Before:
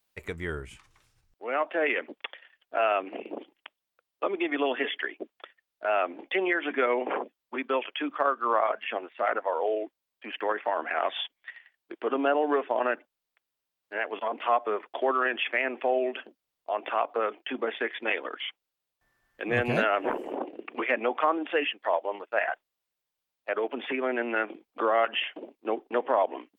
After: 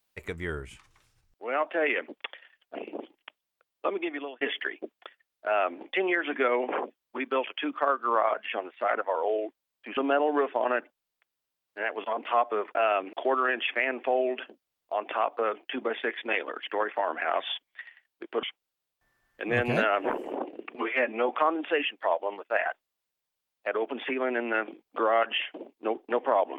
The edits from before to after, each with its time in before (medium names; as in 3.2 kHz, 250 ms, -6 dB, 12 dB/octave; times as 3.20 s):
2.75–3.13 s: move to 14.90 s
4.28–4.79 s: fade out
10.35–12.12 s: move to 18.43 s
20.75–21.11 s: stretch 1.5×